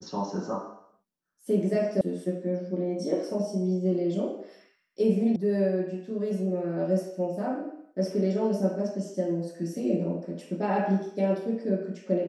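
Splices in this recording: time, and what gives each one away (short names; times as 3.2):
2.01 sound cut off
5.36 sound cut off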